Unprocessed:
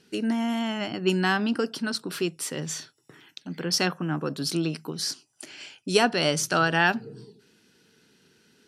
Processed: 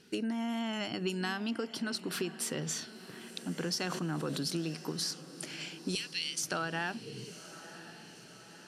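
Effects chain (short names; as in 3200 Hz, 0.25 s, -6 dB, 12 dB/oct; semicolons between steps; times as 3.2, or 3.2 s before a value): 0.73–1.51 high shelf 3900 Hz +9.5 dB; 5.95–6.43 inverse Chebyshev high-pass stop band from 930 Hz, stop band 50 dB; compressor, threshold -32 dBFS, peak gain reduction 15 dB; diffused feedback echo 1.027 s, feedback 58%, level -14.5 dB; 3.78–4.38 sustainer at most 27 dB/s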